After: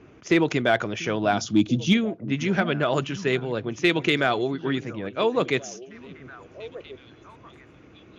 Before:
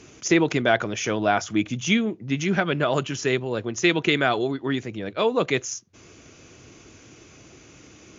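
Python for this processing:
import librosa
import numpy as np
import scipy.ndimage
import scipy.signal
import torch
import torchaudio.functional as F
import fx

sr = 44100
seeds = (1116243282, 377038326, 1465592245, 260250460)

p1 = fx.env_lowpass(x, sr, base_hz=1700.0, full_db=-16.0)
p2 = fx.graphic_eq_10(p1, sr, hz=(125, 250, 500, 1000, 2000, 4000), db=(4, 8, -4, -3, -11, 9), at=(1.32, 1.92), fade=0.02)
p3 = np.clip(10.0 ** (11.0 / 20.0) * p2, -1.0, 1.0) / 10.0 ** (11.0 / 20.0)
p4 = p2 + (p3 * 10.0 ** (-4.0 / 20.0))
p5 = fx.echo_stepped(p4, sr, ms=690, hz=180.0, octaves=1.4, feedback_pct=70, wet_db=-12.0)
y = p5 * 10.0 ** (-5.0 / 20.0)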